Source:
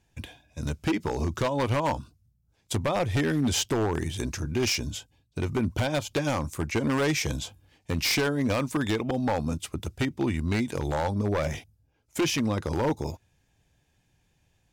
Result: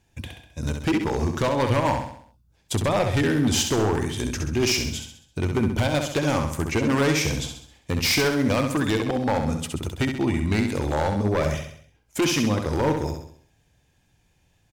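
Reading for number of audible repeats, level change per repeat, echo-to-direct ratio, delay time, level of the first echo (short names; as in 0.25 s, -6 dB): 5, -6.5 dB, -5.0 dB, 66 ms, -6.0 dB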